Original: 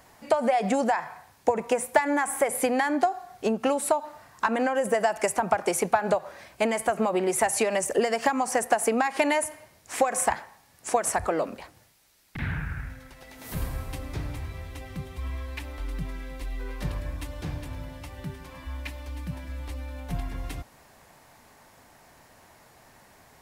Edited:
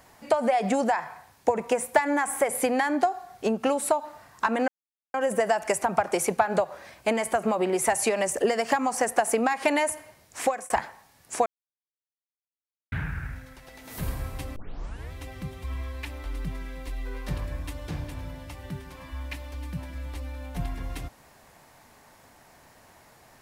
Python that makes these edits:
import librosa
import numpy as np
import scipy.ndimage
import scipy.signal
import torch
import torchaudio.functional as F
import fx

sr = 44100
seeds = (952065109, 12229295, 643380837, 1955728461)

y = fx.edit(x, sr, fx.insert_silence(at_s=4.68, length_s=0.46),
    fx.fade_out_span(start_s=9.98, length_s=0.26),
    fx.silence(start_s=11.0, length_s=1.46),
    fx.tape_start(start_s=14.1, length_s=0.55), tone=tone)